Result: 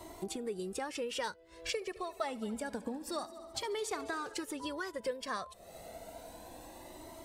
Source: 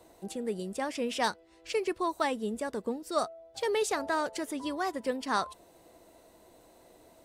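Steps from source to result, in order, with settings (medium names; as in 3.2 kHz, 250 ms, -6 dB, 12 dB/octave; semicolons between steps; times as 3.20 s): compression 6:1, threshold -44 dBFS, peak gain reduction 19.5 dB; 1.72–4.34 s: multi-head delay 71 ms, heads first and third, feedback 64%, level -19 dB; Shepard-style flanger rising 0.28 Hz; trim +13 dB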